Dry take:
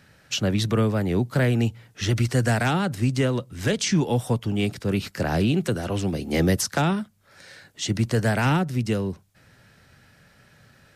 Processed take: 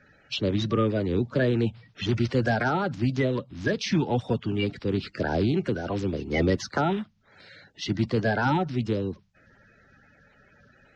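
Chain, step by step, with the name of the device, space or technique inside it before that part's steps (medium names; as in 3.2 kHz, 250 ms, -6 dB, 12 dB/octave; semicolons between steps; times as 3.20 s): clip after many re-uploads (low-pass 4.8 kHz 24 dB/octave; coarse spectral quantiser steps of 30 dB); trim -2 dB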